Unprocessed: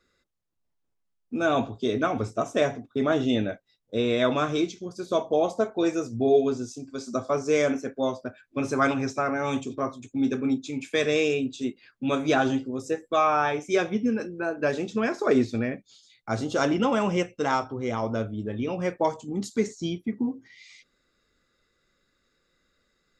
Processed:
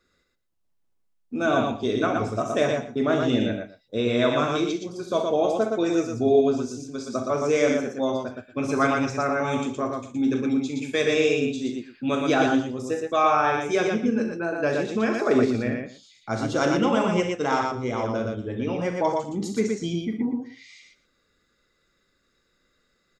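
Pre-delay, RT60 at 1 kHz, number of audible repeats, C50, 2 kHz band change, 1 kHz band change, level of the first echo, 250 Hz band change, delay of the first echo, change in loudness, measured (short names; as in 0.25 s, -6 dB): none, none, 3, none, +2.0 dB, +2.5 dB, -10.0 dB, +2.5 dB, 41 ms, +2.0 dB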